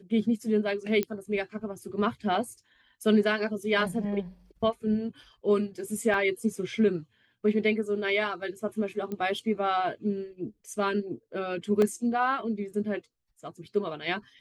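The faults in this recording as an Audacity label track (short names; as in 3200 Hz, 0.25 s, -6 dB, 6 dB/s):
1.030000	1.030000	pop -15 dBFS
2.350000	2.350000	gap 3.2 ms
6.140000	6.140000	gap 2 ms
9.120000	9.120000	pop -23 dBFS
11.820000	11.820000	gap 2.1 ms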